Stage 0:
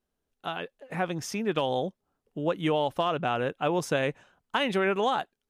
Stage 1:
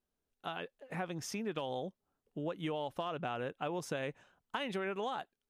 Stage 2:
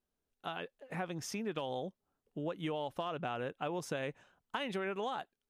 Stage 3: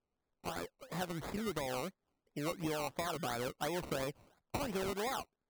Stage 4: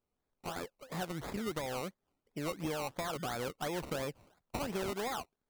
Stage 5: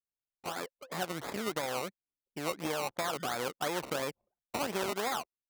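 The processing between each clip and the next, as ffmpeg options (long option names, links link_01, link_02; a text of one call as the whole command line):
ffmpeg -i in.wav -af "acompressor=threshold=-30dB:ratio=3,volume=-5.5dB" out.wav
ffmpeg -i in.wav -af anull out.wav
ffmpeg -i in.wav -af "acrusher=samples=21:mix=1:aa=0.000001:lfo=1:lforange=12.6:lforate=2.9" out.wav
ffmpeg -i in.wav -af "aeval=exprs='clip(val(0),-1,0.0224)':channel_layout=same,volume=1dB" out.wav
ffmpeg -i in.wav -af "aeval=exprs='0.0596*(cos(1*acos(clip(val(0)/0.0596,-1,1)))-cos(1*PI/2))+0.00944*(cos(4*acos(clip(val(0)/0.0596,-1,1)))-cos(4*PI/2))':channel_layout=same,highpass=frequency=400:poles=1,anlmdn=0.000398,volume=4.5dB" out.wav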